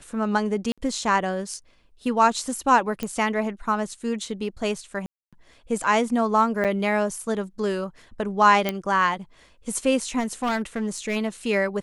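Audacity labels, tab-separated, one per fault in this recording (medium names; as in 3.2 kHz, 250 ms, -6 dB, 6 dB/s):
0.720000	0.780000	dropout 56 ms
3.030000	3.030000	pop -14 dBFS
5.060000	5.330000	dropout 266 ms
6.640000	6.650000	dropout 7.3 ms
8.690000	8.690000	pop -9 dBFS
10.190000	11.170000	clipped -21 dBFS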